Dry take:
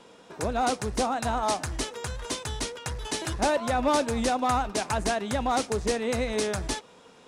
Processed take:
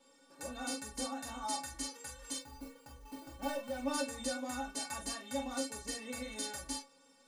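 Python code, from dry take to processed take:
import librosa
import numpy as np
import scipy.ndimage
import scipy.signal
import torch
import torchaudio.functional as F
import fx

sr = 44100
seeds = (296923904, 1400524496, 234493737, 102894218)

p1 = fx.median_filter(x, sr, points=25, at=(2.38, 3.9))
p2 = fx.high_shelf(p1, sr, hz=6600.0, db=10.5)
p3 = fx.stiff_resonator(p2, sr, f0_hz=270.0, decay_s=0.29, stiffness=0.008)
p4 = p3 + fx.room_early_taps(p3, sr, ms=(28, 45), db=(-5.0, -6.0), dry=0)
y = p4 * librosa.db_to_amplitude(1.0)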